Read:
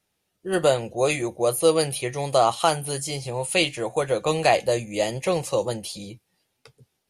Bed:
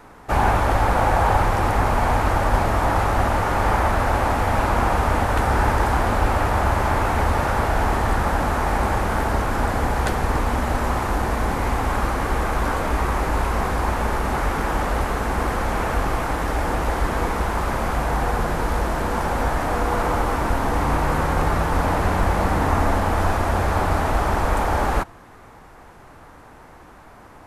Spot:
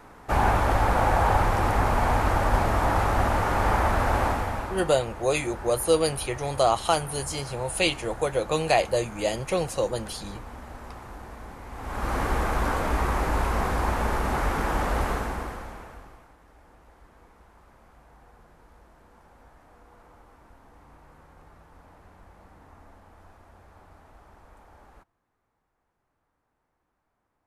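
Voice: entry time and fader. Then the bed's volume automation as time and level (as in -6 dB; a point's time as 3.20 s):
4.25 s, -2.5 dB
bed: 4.25 s -3.5 dB
4.96 s -19.5 dB
11.68 s -19.5 dB
12.15 s -3.5 dB
15.12 s -3.5 dB
16.36 s -32.5 dB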